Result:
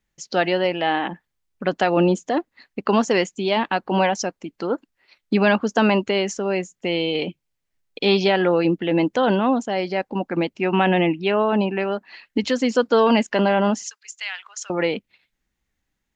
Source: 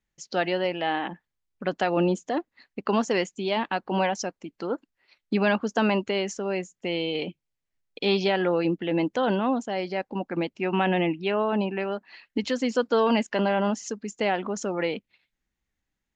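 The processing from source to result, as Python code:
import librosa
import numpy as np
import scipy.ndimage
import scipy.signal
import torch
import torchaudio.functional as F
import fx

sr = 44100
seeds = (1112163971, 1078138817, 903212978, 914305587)

y = fx.bessel_highpass(x, sr, hz=2200.0, order=4, at=(13.83, 14.7))
y = F.gain(torch.from_numpy(y), 5.5).numpy()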